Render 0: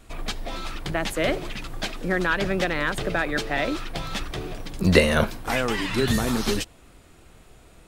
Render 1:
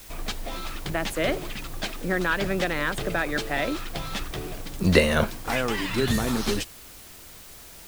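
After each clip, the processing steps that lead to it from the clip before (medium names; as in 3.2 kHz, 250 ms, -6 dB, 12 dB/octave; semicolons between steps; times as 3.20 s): added noise white -45 dBFS; trim -1.5 dB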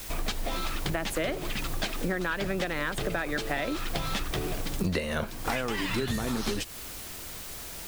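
compression 10:1, threshold -31 dBFS, peak gain reduction 19 dB; trim +5 dB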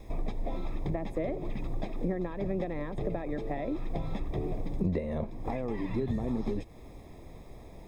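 boxcar filter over 30 samples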